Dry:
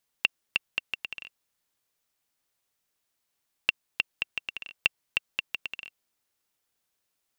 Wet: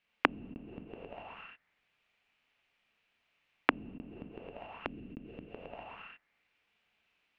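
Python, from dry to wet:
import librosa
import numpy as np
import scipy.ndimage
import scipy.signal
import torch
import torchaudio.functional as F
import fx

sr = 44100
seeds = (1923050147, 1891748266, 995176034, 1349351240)

y = fx.peak_eq(x, sr, hz=890.0, db=-9.5, octaves=1.2, at=(4.75, 5.5))
y = fx.rev_gated(y, sr, seeds[0], gate_ms=300, shape='flat', drr_db=-3.0)
y = fx.envelope_lowpass(y, sr, base_hz=270.0, top_hz=2600.0, q=3.3, full_db=-25.5, direction='down')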